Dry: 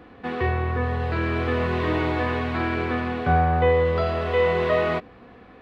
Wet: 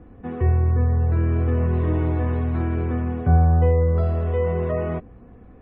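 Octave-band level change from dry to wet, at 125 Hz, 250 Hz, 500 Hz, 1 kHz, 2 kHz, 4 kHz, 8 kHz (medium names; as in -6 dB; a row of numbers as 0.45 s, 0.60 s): +7.5 dB, +1.0 dB, -3.5 dB, -7.0 dB, -12.0 dB, under -15 dB, no reading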